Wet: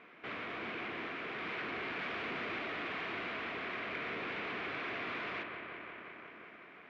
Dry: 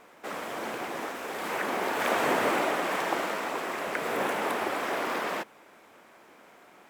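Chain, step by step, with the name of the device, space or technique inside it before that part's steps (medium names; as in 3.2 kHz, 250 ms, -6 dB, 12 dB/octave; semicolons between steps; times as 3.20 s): analogue delay pedal into a guitar amplifier (bucket-brigade echo 179 ms, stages 4096, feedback 78%, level -14 dB; valve stage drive 39 dB, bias 0.65; cabinet simulation 93–3400 Hz, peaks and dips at 550 Hz -8 dB, 860 Hz -10 dB, 2.3 kHz +6 dB); trim +2 dB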